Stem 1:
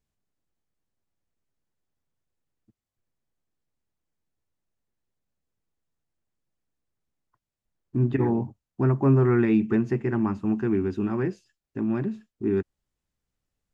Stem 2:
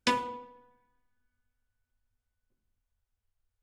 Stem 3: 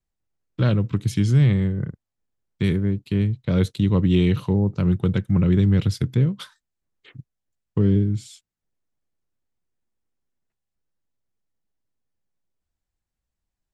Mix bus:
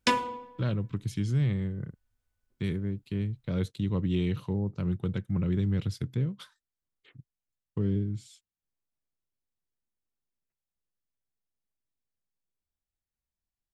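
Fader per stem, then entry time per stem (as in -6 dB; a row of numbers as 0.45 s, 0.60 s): mute, +2.5 dB, -10.0 dB; mute, 0.00 s, 0.00 s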